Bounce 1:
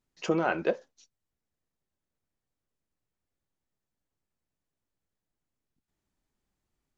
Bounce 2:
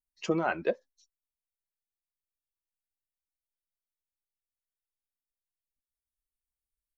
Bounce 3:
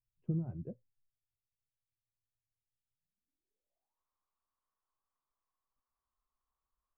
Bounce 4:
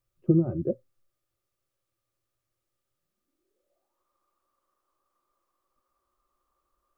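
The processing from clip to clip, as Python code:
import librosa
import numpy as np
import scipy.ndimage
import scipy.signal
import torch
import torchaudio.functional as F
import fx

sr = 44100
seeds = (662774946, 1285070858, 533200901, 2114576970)

y1 = fx.bin_expand(x, sr, power=1.5)
y2 = fx.filter_sweep_lowpass(y1, sr, from_hz=120.0, to_hz=1100.0, start_s=2.9, end_s=4.01, q=7.5)
y2 = F.gain(torch.from_numpy(y2), 3.0).numpy()
y3 = fx.small_body(y2, sr, hz=(360.0, 540.0, 1200.0), ring_ms=45, db=16)
y3 = F.gain(torch.from_numpy(y3), 8.5).numpy()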